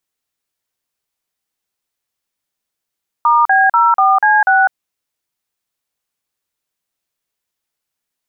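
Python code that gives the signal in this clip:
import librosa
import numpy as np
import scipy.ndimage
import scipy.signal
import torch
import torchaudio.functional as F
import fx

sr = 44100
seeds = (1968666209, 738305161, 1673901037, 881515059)

y = fx.dtmf(sr, digits='*B04C6', tone_ms=203, gap_ms=41, level_db=-10.5)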